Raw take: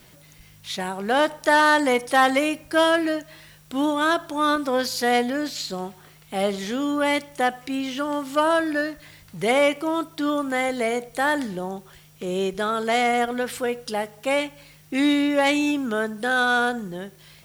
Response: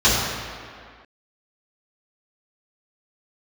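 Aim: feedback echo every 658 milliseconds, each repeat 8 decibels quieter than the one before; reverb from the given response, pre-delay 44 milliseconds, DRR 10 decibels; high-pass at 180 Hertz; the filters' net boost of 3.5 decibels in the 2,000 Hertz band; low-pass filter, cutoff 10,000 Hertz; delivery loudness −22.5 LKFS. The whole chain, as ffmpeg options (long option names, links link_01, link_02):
-filter_complex "[0:a]highpass=180,lowpass=10000,equalizer=frequency=2000:width_type=o:gain=4.5,aecho=1:1:658|1316|1974|2632|3290:0.398|0.159|0.0637|0.0255|0.0102,asplit=2[link_01][link_02];[1:a]atrim=start_sample=2205,adelay=44[link_03];[link_02][link_03]afir=irnorm=-1:irlink=0,volume=-32.5dB[link_04];[link_01][link_04]amix=inputs=2:normalize=0,volume=-1.5dB"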